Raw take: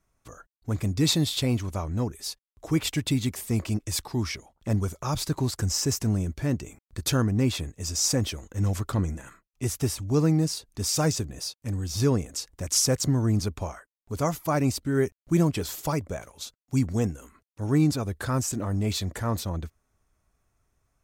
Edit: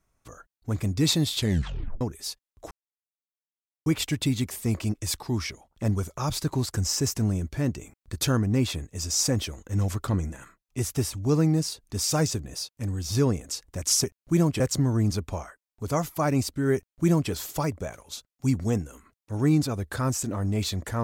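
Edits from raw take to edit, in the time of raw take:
1.37 tape stop 0.64 s
2.71 insert silence 1.15 s
15.04–15.6 copy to 12.89

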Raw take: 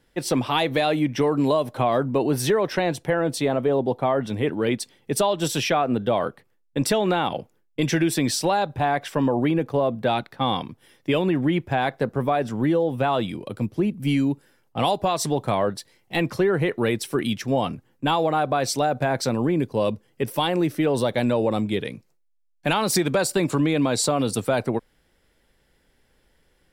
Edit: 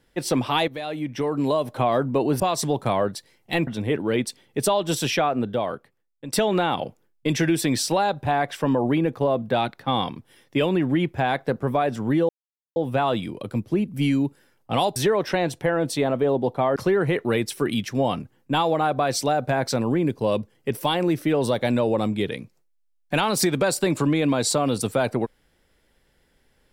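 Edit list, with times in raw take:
0.68–1.76 fade in, from -13.5 dB
2.4–4.2 swap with 15.02–16.29
5.68–6.86 fade out, to -14.5 dB
12.82 insert silence 0.47 s

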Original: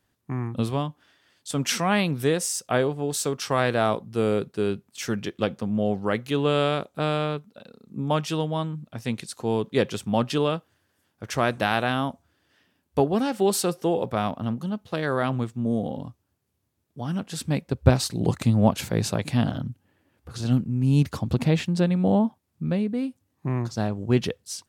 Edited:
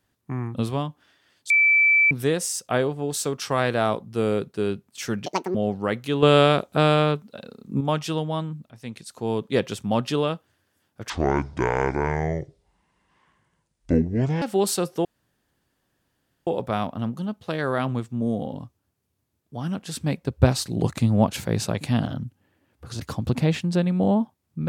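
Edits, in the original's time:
1.5–2.11 bleep 2320 Hz -14 dBFS
5.26–5.77 speed 178%
6.45–8.03 gain +6.5 dB
8.93–9.64 fade in, from -12.5 dB
11.32–13.28 speed 59%
13.91 insert room tone 1.42 s
20.44–21.04 cut

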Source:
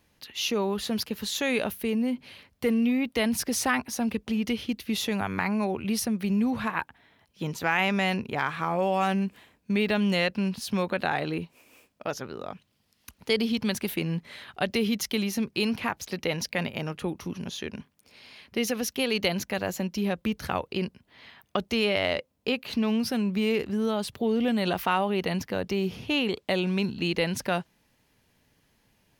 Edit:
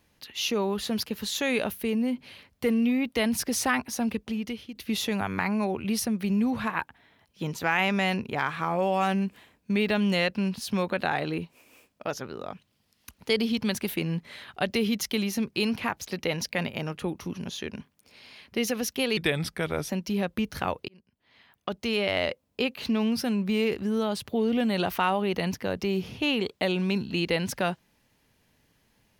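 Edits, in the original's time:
4.08–4.75 fade out, to -13 dB
19.17–19.77 speed 83%
20.76–22.11 fade in

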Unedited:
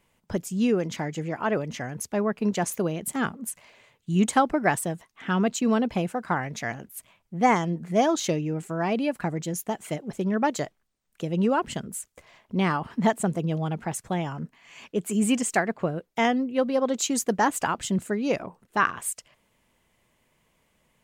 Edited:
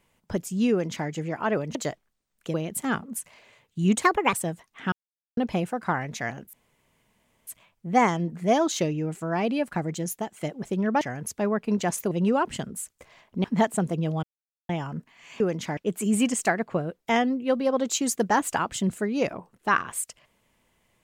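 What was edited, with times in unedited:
0.71–1.08 copy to 14.86
1.75–2.85 swap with 10.49–11.28
4.34–4.75 speed 136%
5.34–5.79 mute
6.95 insert room tone 0.94 s
9.61–9.89 fade out, to -9.5 dB
12.61–12.9 cut
13.69–14.15 mute

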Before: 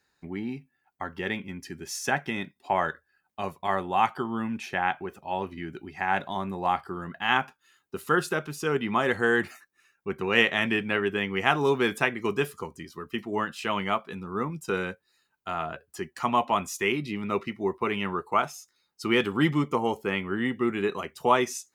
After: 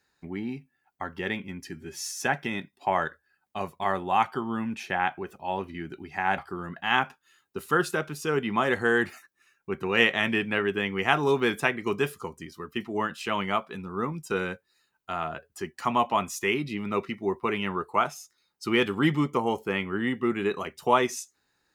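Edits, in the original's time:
1.73–2.07 stretch 1.5×
6.21–6.76 cut

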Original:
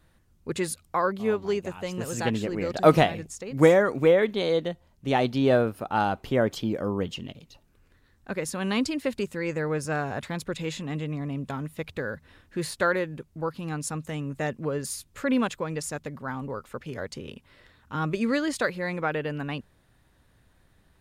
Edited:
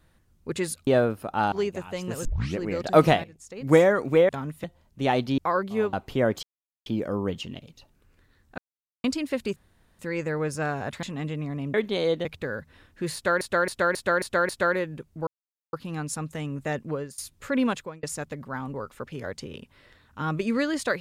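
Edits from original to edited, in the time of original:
0.87–1.42 swap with 5.44–6.09
2.15 tape start 0.32 s
3.14–3.52 fade in quadratic, from -14.5 dB
4.19–4.7 swap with 11.45–11.8
6.59 insert silence 0.43 s
8.31–8.77 mute
9.29 insert room tone 0.43 s
10.33–10.74 cut
12.69–12.96 loop, 6 plays
13.47 insert silence 0.46 s
14.65–14.92 fade out, to -22.5 dB
15.48–15.77 fade out

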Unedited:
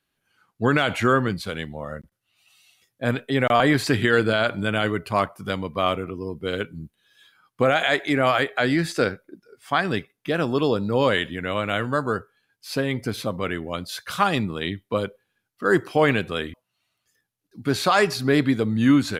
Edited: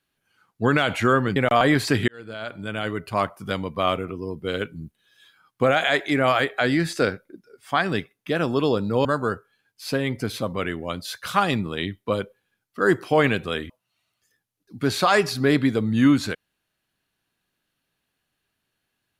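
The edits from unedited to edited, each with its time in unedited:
1.36–3.35 cut
4.07–5.38 fade in
11.04–11.89 cut

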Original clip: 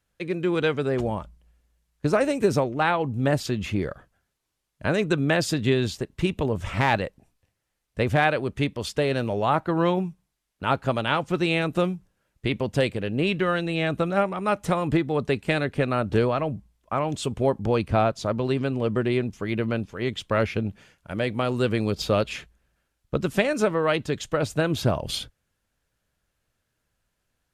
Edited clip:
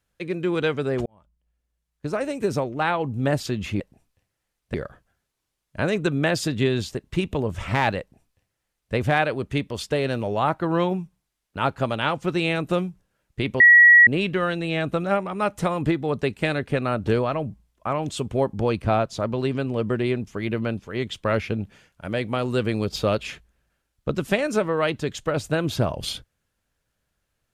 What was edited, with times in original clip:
1.06–3.04 fade in
7.06–8 copy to 3.8
12.66–13.13 bleep 1920 Hz -8 dBFS

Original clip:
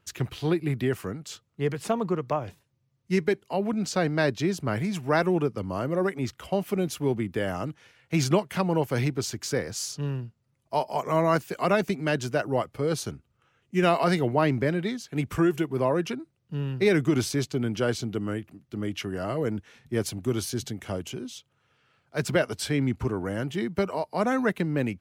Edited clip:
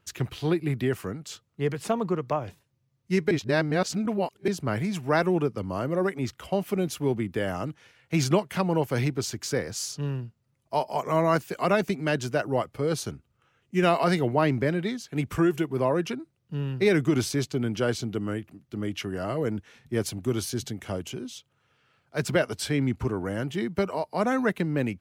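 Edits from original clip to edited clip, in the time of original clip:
3.31–4.48 reverse

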